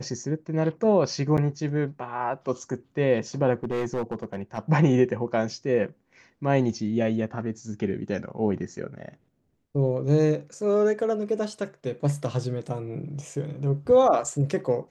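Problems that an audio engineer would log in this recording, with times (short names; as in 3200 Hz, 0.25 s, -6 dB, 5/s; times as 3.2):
1.37–1.38 gap 8.1 ms
3.64–4.59 clipped -23 dBFS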